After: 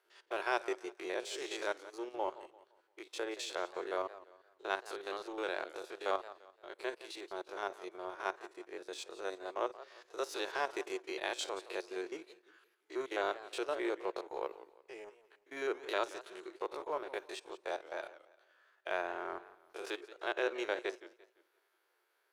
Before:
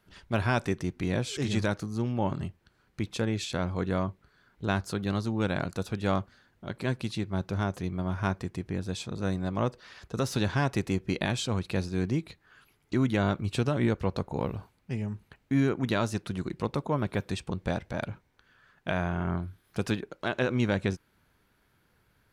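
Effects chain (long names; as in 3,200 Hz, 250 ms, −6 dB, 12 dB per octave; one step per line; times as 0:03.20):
spectrum averaged block by block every 50 ms
elliptic high-pass filter 360 Hz, stop band 40 dB
transient designer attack −2 dB, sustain −6 dB
in parallel at −8 dB: dead-zone distortion −46 dBFS
on the sum: feedback echo with a swinging delay time 172 ms, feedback 35%, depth 187 cents, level −16 dB
level −4.5 dB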